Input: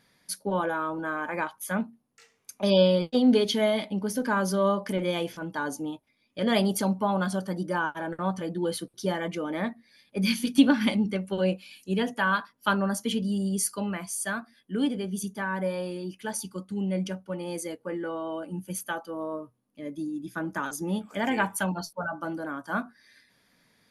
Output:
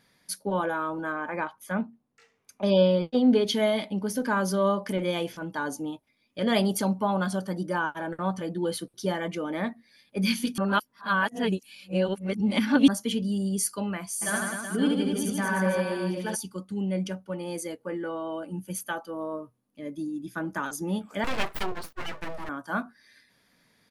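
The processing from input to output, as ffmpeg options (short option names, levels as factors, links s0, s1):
-filter_complex "[0:a]asettb=1/sr,asplit=3[s0][s1][s2];[s0]atrim=end=1.124[s3];[s1]atrim=start=1.12:end=3.47,asetpts=PTS-STARTPTS,afade=t=in:d=0.004:c=qsin,afade=t=out:st=2.346:d=0.004:c=qsin,highshelf=f=4300:g=-12[s4];[s2]atrim=start=3.466[s5];[s3][s4]acrossfade=d=0.004:c1=hsin:c2=qsin[s6];[s6][s5]acrossfade=d=0.004:c1=qsin:c2=hsin,asplit=3[s7][s8][s9];[s7]afade=t=out:st=14.21:d=0.02[s10];[s8]aecho=1:1:70|154|254.8|375.8|520.9:0.794|0.631|0.501|0.398|0.316,afade=t=in:st=14.21:d=0.02,afade=t=out:st=16.34:d=0.02[s11];[s9]afade=t=in:st=16.34:d=0.02[s12];[s10][s11][s12]amix=inputs=3:normalize=0,asettb=1/sr,asplit=3[s13][s14][s15];[s13]atrim=end=21.244[s16];[s14]atrim=start=21.24:end=22.49,asetpts=PTS-STARTPTS,afade=t=in:d=0.004:c=qsin,afade=t=out:st=1.246:d=0.004:c=qsin,aeval=exprs='abs(val(0))':c=same[s17];[s15]atrim=start=22.486[s18];[s16][s17]acrossfade=d=0.004:c1=hsin:c2=qsin[s19];[s19][s18]acrossfade=d=0.004:c1=qsin:c2=hsin,asplit=3[s20][s21][s22];[s20]atrim=end=10.582[s23];[s21]atrim=start=10.578:end=12.882,asetpts=PTS-STARTPTS,areverse[s24];[s22]atrim=start=12.878[s25];[s23][s24]acrossfade=d=0.004:c1=hsin:c2=hsin[s26];[s26][s25]acrossfade=d=0.004:c1=hsin:c2=hsin"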